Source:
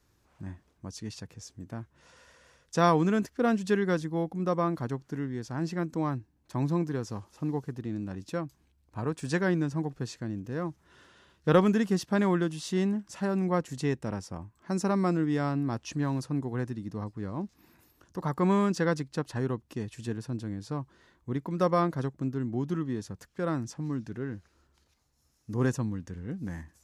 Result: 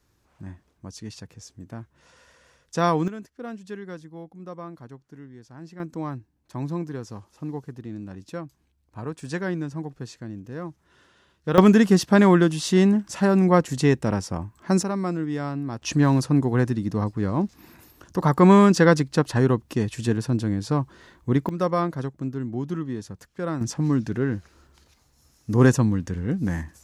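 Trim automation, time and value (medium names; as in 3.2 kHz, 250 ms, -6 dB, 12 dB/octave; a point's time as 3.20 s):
+1.5 dB
from 3.08 s -10 dB
from 5.80 s -1 dB
from 11.58 s +10 dB
from 14.83 s 0 dB
from 15.82 s +11 dB
from 21.49 s +2 dB
from 23.61 s +11 dB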